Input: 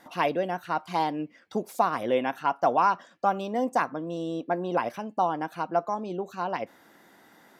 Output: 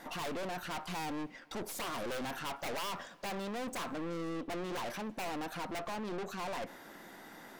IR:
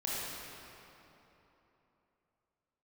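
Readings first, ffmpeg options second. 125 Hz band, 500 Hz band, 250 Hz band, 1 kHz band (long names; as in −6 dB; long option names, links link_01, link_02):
−7.0 dB, −12.0 dB, −8.0 dB, −14.5 dB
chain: -filter_complex "[0:a]aeval=exprs='(mod(6.31*val(0)+1,2)-1)/6.31':channel_layout=same,aeval=exprs='(tanh(158*val(0)+0.5)-tanh(0.5))/158':channel_layout=same,asplit=2[link_01][link_02];[1:a]atrim=start_sample=2205,adelay=107[link_03];[link_02][link_03]afir=irnorm=-1:irlink=0,volume=-27.5dB[link_04];[link_01][link_04]amix=inputs=2:normalize=0,volume=6.5dB"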